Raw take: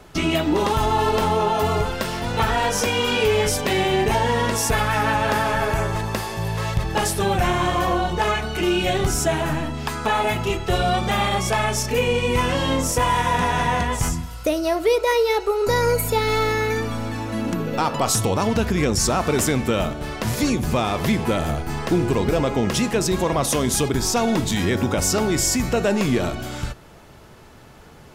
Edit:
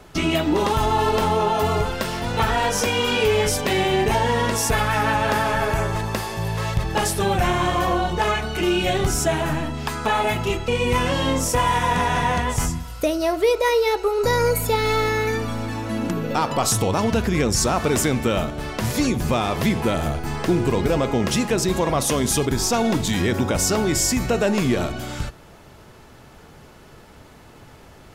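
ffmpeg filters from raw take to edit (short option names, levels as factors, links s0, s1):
-filter_complex "[0:a]asplit=2[s0][s1];[s0]atrim=end=10.682[s2];[s1]atrim=start=12.108[s3];[s2][s3]acrossfade=d=0.004:c1=hsin:c2=hsin"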